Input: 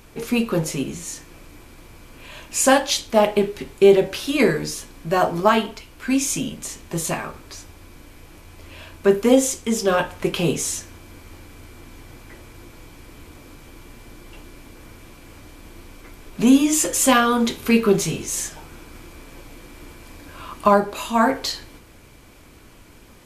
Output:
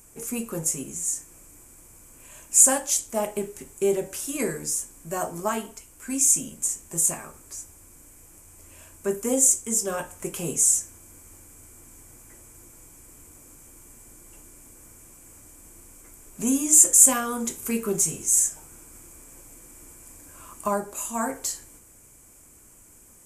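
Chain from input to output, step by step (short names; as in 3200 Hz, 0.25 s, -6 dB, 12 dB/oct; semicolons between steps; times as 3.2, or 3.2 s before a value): resonant high shelf 5600 Hz +12.5 dB, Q 3; gain -10.5 dB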